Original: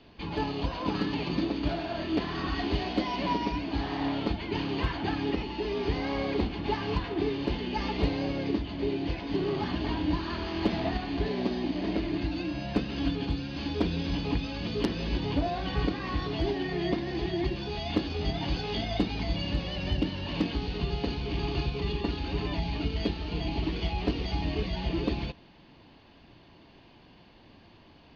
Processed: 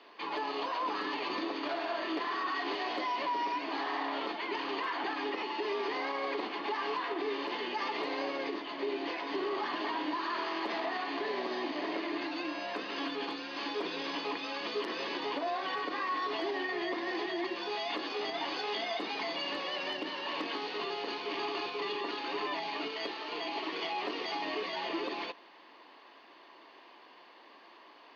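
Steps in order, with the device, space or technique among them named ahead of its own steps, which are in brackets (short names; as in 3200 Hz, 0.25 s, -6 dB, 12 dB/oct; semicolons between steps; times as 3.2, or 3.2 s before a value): 22.9–23.72 HPF 250 Hz 6 dB/oct; laptop speaker (HPF 350 Hz 24 dB/oct; bell 1100 Hz +9.5 dB 0.51 oct; bell 1900 Hz +6 dB 0.36 oct; limiter -26 dBFS, peak gain reduction 12 dB)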